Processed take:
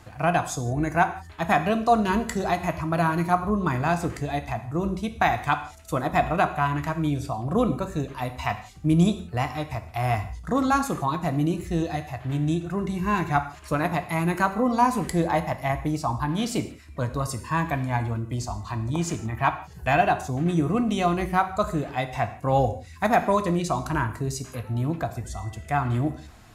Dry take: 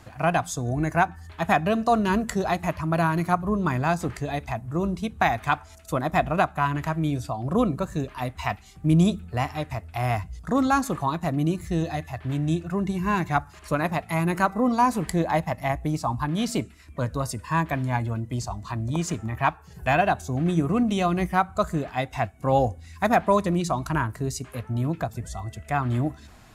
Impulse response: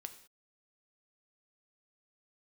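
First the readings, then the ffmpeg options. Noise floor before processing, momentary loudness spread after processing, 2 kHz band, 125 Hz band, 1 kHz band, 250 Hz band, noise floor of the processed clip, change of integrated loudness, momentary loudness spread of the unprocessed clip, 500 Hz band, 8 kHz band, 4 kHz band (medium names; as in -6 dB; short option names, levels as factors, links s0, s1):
-49 dBFS, 8 LU, 0.0 dB, -0.5 dB, +0.5 dB, -0.5 dB, -45 dBFS, 0.0 dB, 8 LU, 0.0 dB, 0.0 dB, 0.0 dB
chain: -filter_complex "[1:a]atrim=start_sample=2205,afade=t=out:st=0.23:d=0.01,atrim=end_sample=10584[s0];[0:a][s0]afir=irnorm=-1:irlink=0,volume=1.68"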